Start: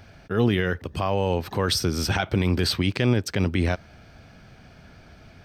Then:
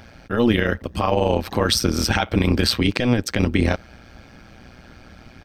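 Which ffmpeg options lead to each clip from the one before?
-af "aecho=1:1:3.7:0.42,tremolo=f=120:d=0.824,volume=2.37"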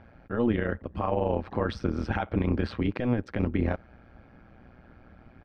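-af "lowpass=1600,volume=0.422"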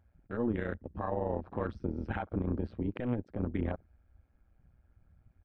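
-af "afwtdn=0.0126,volume=0.473"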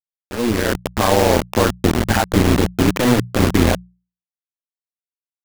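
-af "acrusher=bits=5:mix=0:aa=0.000001,dynaudnorm=f=100:g=11:m=4.22,bandreject=f=60:t=h:w=6,bandreject=f=120:t=h:w=6,bandreject=f=180:t=h:w=6,volume=2"

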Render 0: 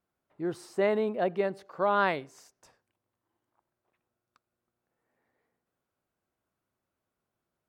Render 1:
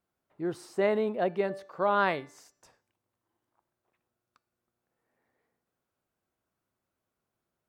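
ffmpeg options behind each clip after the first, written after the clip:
-af "bandreject=f=291.8:t=h:w=4,bandreject=f=583.6:t=h:w=4,bandreject=f=875.4:t=h:w=4,bandreject=f=1167.2:t=h:w=4,bandreject=f=1459:t=h:w=4,bandreject=f=1750.8:t=h:w=4,bandreject=f=2042.6:t=h:w=4,bandreject=f=2334.4:t=h:w=4,bandreject=f=2626.2:t=h:w=4,bandreject=f=2918:t=h:w=4,bandreject=f=3209.8:t=h:w=4,bandreject=f=3501.6:t=h:w=4,bandreject=f=3793.4:t=h:w=4,bandreject=f=4085.2:t=h:w=4,bandreject=f=4377:t=h:w=4,bandreject=f=4668.8:t=h:w=4,bandreject=f=4960.6:t=h:w=4,bandreject=f=5252.4:t=h:w=4,bandreject=f=5544.2:t=h:w=4,bandreject=f=5836:t=h:w=4,bandreject=f=6127.8:t=h:w=4,bandreject=f=6419.6:t=h:w=4,bandreject=f=6711.4:t=h:w=4,bandreject=f=7003.2:t=h:w=4,bandreject=f=7295:t=h:w=4,bandreject=f=7586.8:t=h:w=4,bandreject=f=7878.6:t=h:w=4,bandreject=f=8170.4:t=h:w=4"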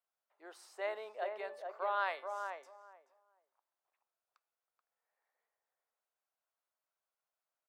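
-filter_complex "[0:a]highpass=f=590:w=0.5412,highpass=f=590:w=1.3066,asplit=2[s0][s1];[s1]adelay=431,lowpass=f=1100:p=1,volume=0.631,asplit=2[s2][s3];[s3]adelay=431,lowpass=f=1100:p=1,volume=0.19,asplit=2[s4][s5];[s5]adelay=431,lowpass=f=1100:p=1,volume=0.19[s6];[s2][s4][s6]amix=inputs=3:normalize=0[s7];[s0][s7]amix=inputs=2:normalize=0,volume=0.398"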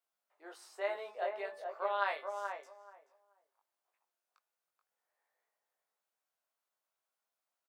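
-filter_complex "[0:a]highpass=190,asplit=2[s0][s1];[s1]adelay=20,volume=0.708[s2];[s0][s2]amix=inputs=2:normalize=0"

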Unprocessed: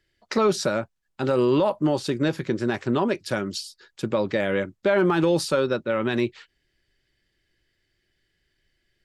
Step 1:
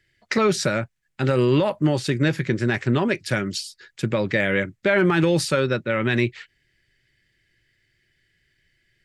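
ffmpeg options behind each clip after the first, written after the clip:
-af "equalizer=f=125:t=o:w=1:g=9,equalizer=f=1000:t=o:w=1:g=-4,equalizer=f=2000:t=o:w=1:g=10,equalizer=f=8000:t=o:w=1:g=4"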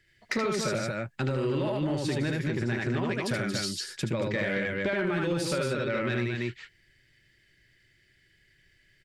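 -filter_complex "[0:a]asplit=2[s0][s1];[s1]aecho=0:1:75.8|227.4:0.794|0.501[s2];[s0][s2]amix=inputs=2:normalize=0,acompressor=threshold=0.0562:ratio=6,asoftclip=type=tanh:threshold=0.119"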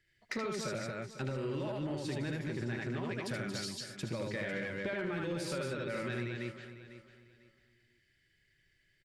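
-af "aecho=1:1:499|998|1497:0.224|0.0627|0.0176,volume=0.376"

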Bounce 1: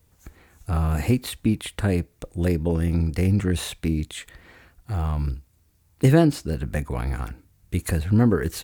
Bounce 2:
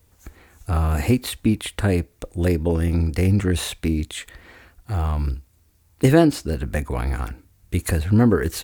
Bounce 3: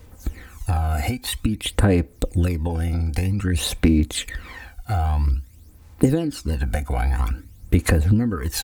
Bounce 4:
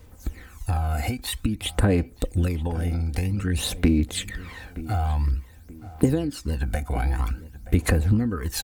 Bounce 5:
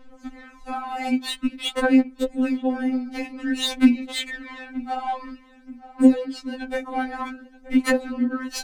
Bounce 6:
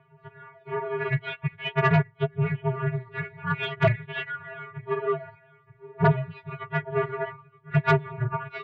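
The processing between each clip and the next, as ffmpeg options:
-af "equalizer=f=150:t=o:w=0.56:g=-6,volume=1.5"
-af "aecho=1:1:3.9:0.31,acompressor=threshold=0.0501:ratio=16,aphaser=in_gain=1:out_gain=1:delay=1.4:decay=0.63:speed=0.51:type=sinusoidal,volume=1.78"
-filter_complex "[0:a]asplit=2[s0][s1];[s1]adelay=926,lowpass=f=1900:p=1,volume=0.158,asplit=2[s2][s3];[s3]adelay=926,lowpass=f=1900:p=1,volume=0.38,asplit=2[s4][s5];[s5]adelay=926,lowpass=f=1900:p=1,volume=0.38[s6];[s0][s2][s4][s6]amix=inputs=4:normalize=0,volume=0.708"
-af "adynamicsmooth=sensitivity=3.5:basefreq=3200,afftfilt=real='re*3.46*eq(mod(b,12),0)':imag='im*3.46*eq(mod(b,12),0)':win_size=2048:overlap=0.75,volume=1.88"
-af "aeval=exprs='0.668*(cos(1*acos(clip(val(0)/0.668,-1,1)))-cos(1*PI/2))+0.266*(cos(6*acos(clip(val(0)/0.668,-1,1)))-cos(6*PI/2))':c=same,highpass=f=440:t=q:w=0.5412,highpass=f=440:t=q:w=1.307,lowpass=f=3000:t=q:w=0.5176,lowpass=f=3000:t=q:w=0.7071,lowpass=f=3000:t=q:w=1.932,afreqshift=-370,asoftclip=type=tanh:threshold=0.299"

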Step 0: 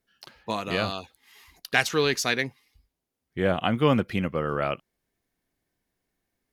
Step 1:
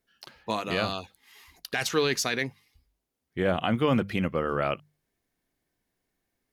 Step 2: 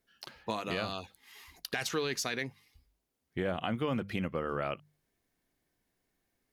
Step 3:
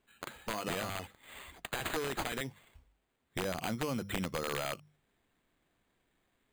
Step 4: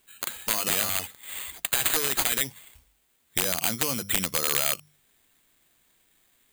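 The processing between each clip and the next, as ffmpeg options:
-af "bandreject=f=50:t=h:w=6,bandreject=f=100:t=h:w=6,bandreject=f=150:t=h:w=6,bandreject=f=200:t=h:w=6,alimiter=limit=0.2:level=0:latency=1:release=15"
-af "acompressor=threshold=0.0224:ratio=2.5"
-af "acompressor=threshold=0.02:ratio=20,acrusher=samples=8:mix=1:aa=0.000001,aeval=exprs='(mod(28.2*val(0)+1,2)-1)/28.2':c=same,volume=1.5"
-af "crystalizer=i=6.5:c=0,volume=1.19"

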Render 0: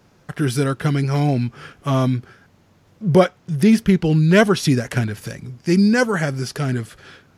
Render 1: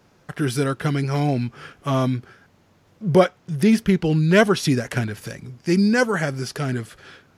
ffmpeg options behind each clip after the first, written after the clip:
-af "bass=f=250:g=-3,treble=f=4000:g=-1,volume=0.891"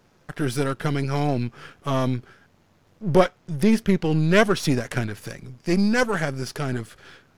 -af "aeval=exprs='if(lt(val(0),0),0.447*val(0),val(0))':c=same"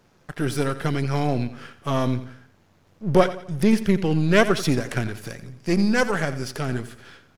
-af "aecho=1:1:87|174|261|348:0.2|0.0798|0.0319|0.0128"

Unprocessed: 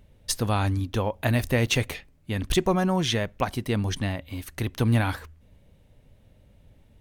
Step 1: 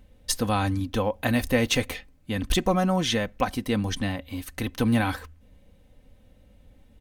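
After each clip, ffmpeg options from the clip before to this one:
-af "aecho=1:1:3.9:0.52"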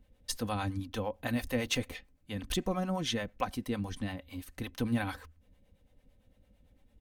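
-filter_complex "[0:a]acrossover=split=490[s0][s1];[s0]aeval=exprs='val(0)*(1-0.7/2+0.7/2*cos(2*PI*8.9*n/s))':c=same[s2];[s1]aeval=exprs='val(0)*(1-0.7/2-0.7/2*cos(2*PI*8.9*n/s))':c=same[s3];[s2][s3]amix=inputs=2:normalize=0,volume=0.501"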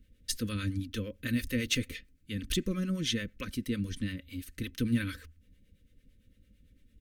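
-af "asuperstop=centerf=810:order=4:qfactor=0.69,volume=1.33"

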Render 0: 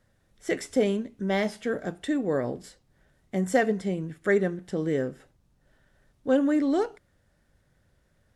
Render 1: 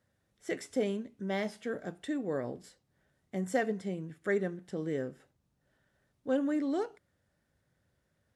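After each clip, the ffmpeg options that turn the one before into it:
-af "highpass=74,volume=0.422"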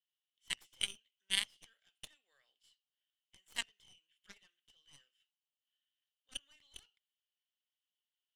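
-af "highpass=f=3000:t=q:w=13,aeval=exprs='0.0891*(cos(1*acos(clip(val(0)/0.0891,-1,1)))-cos(1*PI/2))+0.0316*(cos(3*acos(clip(val(0)/0.0891,-1,1)))-cos(3*PI/2))+0.00224*(cos(4*acos(clip(val(0)/0.0891,-1,1)))-cos(4*PI/2))':c=same,volume=1.88"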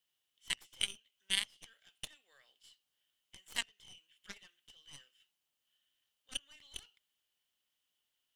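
-af "acompressor=threshold=0.00282:ratio=1.5,volume=2.66"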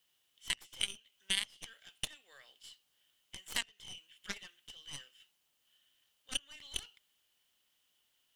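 -af "alimiter=limit=0.0668:level=0:latency=1:release=302,volume=2.51"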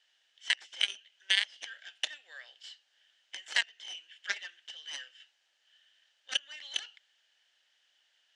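-af "highpass=f=410:w=0.5412,highpass=f=410:w=1.3066,equalizer=f=430:t=q:w=4:g=-9,equalizer=f=1100:t=q:w=4:g=-8,equalizer=f=1700:t=q:w=4:g=9,lowpass=f=6400:w=0.5412,lowpass=f=6400:w=1.3066,volume=2"

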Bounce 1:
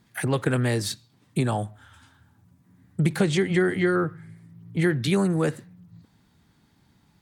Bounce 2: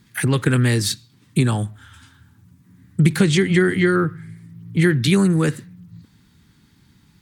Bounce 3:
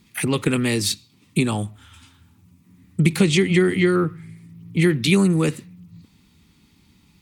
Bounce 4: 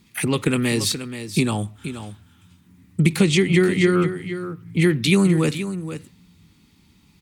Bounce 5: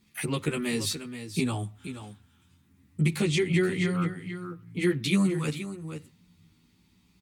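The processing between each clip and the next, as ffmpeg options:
-af "equalizer=f=670:t=o:w=1.1:g=-12.5,volume=2.51"
-af "equalizer=f=125:t=o:w=0.33:g=-11,equalizer=f=1600:t=o:w=0.33:g=-11,equalizer=f=2500:t=o:w=0.33:g=6"
-af "aecho=1:1:478:0.282"
-filter_complex "[0:a]asplit=2[s0][s1];[s1]adelay=11.3,afreqshift=0.37[s2];[s0][s2]amix=inputs=2:normalize=1,volume=0.562"

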